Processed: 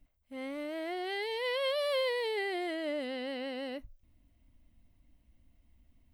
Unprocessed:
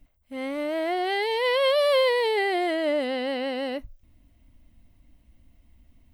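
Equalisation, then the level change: dynamic bell 830 Hz, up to -5 dB, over -35 dBFS, Q 1.1; -8.0 dB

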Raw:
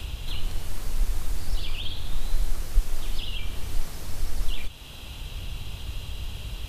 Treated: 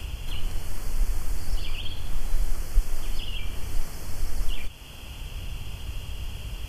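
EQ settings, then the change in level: Butterworth band-stop 3.8 kHz, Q 4.1; 0.0 dB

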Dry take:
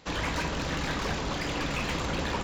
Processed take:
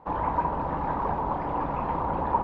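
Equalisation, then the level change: resonant low-pass 920 Hz, resonance Q 5.1; -1.0 dB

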